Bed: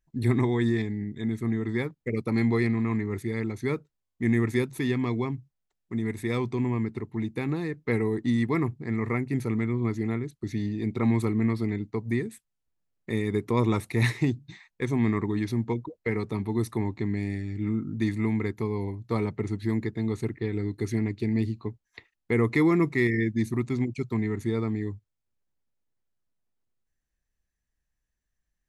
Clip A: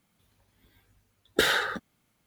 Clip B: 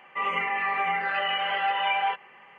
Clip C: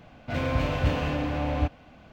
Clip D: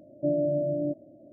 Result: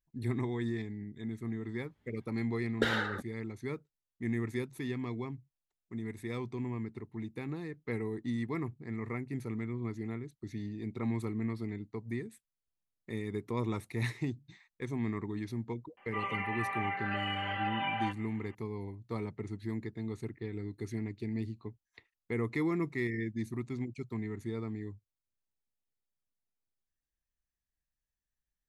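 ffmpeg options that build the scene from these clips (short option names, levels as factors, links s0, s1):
-filter_complex "[0:a]volume=0.316[s0];[1:a]aemphasis=mode=reproduction:type=75fm,atrim=end=2.26,asetpts=PTS-STARTPTS,volume=0.501,afade=t=in:d=0.004:c=hsin,afade=t=out:st=2.256:d=0.004:c=hsin,adelay=1430[s1];[2:a]atrim=end=2.58,asetpts=PTS-STARTPTS,volume=0.355,afade=t=in:d=0.004:c=hsin,afade=t=out:st=2.576:d=0.004:c=hsin,adelay=15970[s2];[s0][s1][s2]amix=inputs=3:normalize=0"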